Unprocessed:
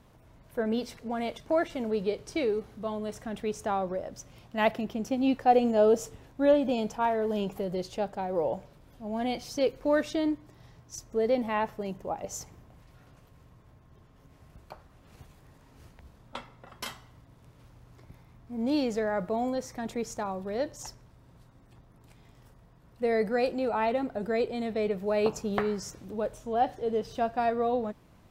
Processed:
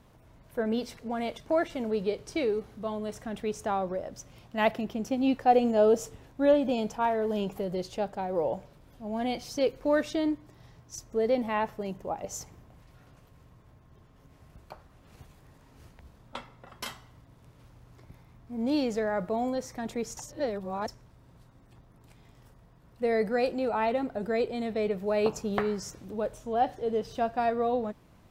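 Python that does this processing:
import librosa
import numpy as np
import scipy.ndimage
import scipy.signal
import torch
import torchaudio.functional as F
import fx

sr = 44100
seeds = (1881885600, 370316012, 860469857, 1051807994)

y = fx.edit(x, sr, fx.reverse_span(start_s=20.17, length_s=0.71), tone=tone)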